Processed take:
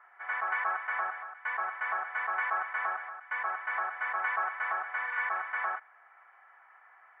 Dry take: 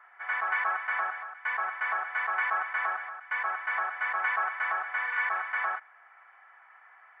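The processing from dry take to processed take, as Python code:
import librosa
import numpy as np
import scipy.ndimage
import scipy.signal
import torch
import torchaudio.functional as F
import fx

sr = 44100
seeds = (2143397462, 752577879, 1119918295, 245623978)

y = fx.high_shelf(x, sr, hz=2700.0, db=-11.0)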